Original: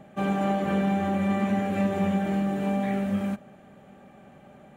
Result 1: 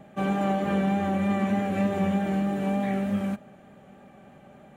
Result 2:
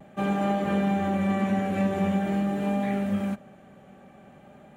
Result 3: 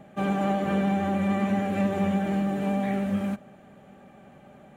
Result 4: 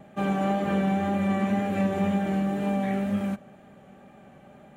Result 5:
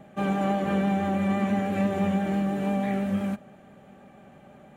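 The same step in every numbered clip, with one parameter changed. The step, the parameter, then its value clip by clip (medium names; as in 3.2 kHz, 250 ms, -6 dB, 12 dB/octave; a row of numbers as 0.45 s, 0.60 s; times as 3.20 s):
vibrato, rate: 3.3 Hz, 0.46 Hz, 13 Hz, 2 Hz, 6 Hz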